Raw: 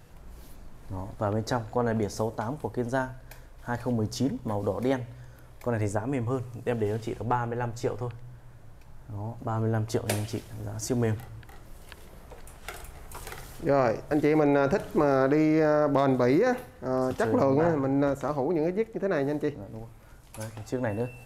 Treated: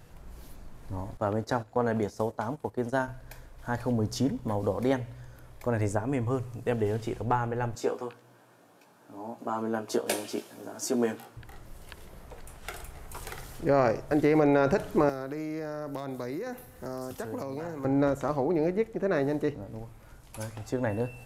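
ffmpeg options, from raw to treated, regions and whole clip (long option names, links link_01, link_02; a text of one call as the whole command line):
ffmpeg -i in.wav -filter_complex "[0:a]asettb=1/sr,asplit=3[link_01][link_02][link_03];[link_01]atrim=end=1.174[link_04];[link_02]atrim=start=1.17:end=3.08,asetpts=PTS-STARTPTS,afade=type=in:duration=0.004:curve=qsin,afade=type=out:start_time=1.906:duration=0.004:curve=qsin,agate=range=-11dB:threshold=-35dB:ratio=16:release=100:detection=peak,highpass=frequency=120:poles=1[link_05];[link_03]atrim=start=3.076[link_06];[link_04][link_05]acrossfade=duration=0.004:curve1=hsin:curve2=qsin[link_07];[link_07][link_06]acrossfade=duration=0.004:curve1=qsin:curve2=hsin,asettb=1/sr,asplit=3[link_08][link_09][link_10];[link_08]atrim=end=7.754[link_11];[link_09]atrim=start=7.75:end=11.37,asetpts=PTS-STARTPTS,afade=type=in:duration=0.004:curve=qsin,afade=type=out:start_time=3.616:duration=0.004:curve=qsin,highpass=frequency=220:width=0.5412,highpass=frequency=220:width=1.3066,bandreject=frequency=2000:width=9.4,asplit=2[link_12][link_13];[link_13]adelay=17,volume=-5dB[link_14];[link_12][link_14]amix=inputs=2:normalize=0,atrim=end_sample=159642[link_15];[link_10]atrim=start=11.366[link_16];[link_11][link_15]acrossfade=duration=0.004:curve1=hsin:curve2=qsin[link_17];[link_17][link_16]acrossfade=duration=0.004:curve1=qsin:curve2=hsin,asettb=1/sr,asplit=3[link_18][link_19][link_20];[link_18]atrim=end=15.094[link_21];[link_19]atrim=start=15.09:end=17.85,asetpts=PTS-STARTPTS,afade=type=in:duration=0.004:curve=qsin,afade=type=out:start_time=2.756:duration=0.004:curve=qsin,acrossover=split=250|2000[link_22][link_23][link_24];[link_22]acompressor=threshold=-43dB:ratio=4[link_25];[link_23]acompressor=threshold=-37dB:ratio=4[link_26];[link_24]acompressor=threshold=-57dB:ratio=4[link_27];[link_25][link_26][link_27]amix=inputs=3:normalize=0,aemphasis=mode=production:type=50fm[link_28];[link_20]atrim=start=17.846[link_29];[link_21][link_28]acrossfade=duration=0.004:curve1=hsin:curve2=qsin[link_30];[link_30][link_29]acrossfade=duration=0.004:curve1=qsin:curve2=hsin" out.wav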